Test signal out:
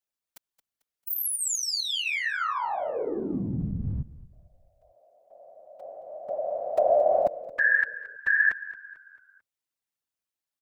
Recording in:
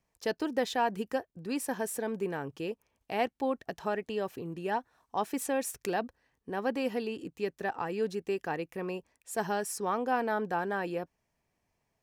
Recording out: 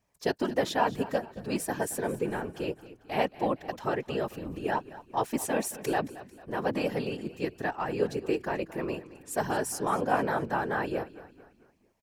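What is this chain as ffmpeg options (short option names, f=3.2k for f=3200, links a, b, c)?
-filter_complex "[0:a]afftfilt=real='hypot(re,im)*cos(2*PI*random(0))':imag='hypot(re,im)*sin(2*PI*random(1))':win_size=512:overlap=0.75,asplit=5[a][b][c][d][e];[b]adelay=222,afreqshift=-31,volume=-16.5dB[f];[c]adelay=444,afreqshift=-62,volume=-23.4dB[g];[d]adelay=666,afreqshift=-93,volume=-30.4dB[h];[e]adelay=888,afreqshift=-124,volume=-37.3dB[i];[a][f][g][h][i]amix=inputs=5:normalize=0,volume=8.5dB"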